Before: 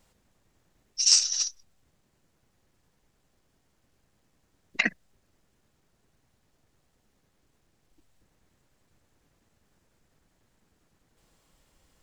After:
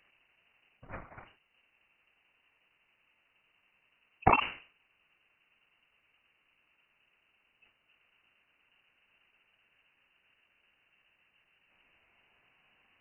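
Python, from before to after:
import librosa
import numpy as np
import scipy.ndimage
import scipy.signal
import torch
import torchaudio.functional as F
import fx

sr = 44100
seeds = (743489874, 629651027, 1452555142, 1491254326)

y = fx.speed_glide(x, sr, from_pct=122, to_pct=63)
y = scipy.signal.sosfilt(scipy.signal.butter(2, 66.0, 'highpass', fs=sr, output='sos'), y)
y = fx.low_shelf(y, sr, hz=180.0, db=-4.5)
y = fx.freq_invert(y, sr, carrier_hz=2900)
y = fx.sustainer(y, sr, db_per_s=130.0)
y = y * 10.0 ** (2.0 / 20.0)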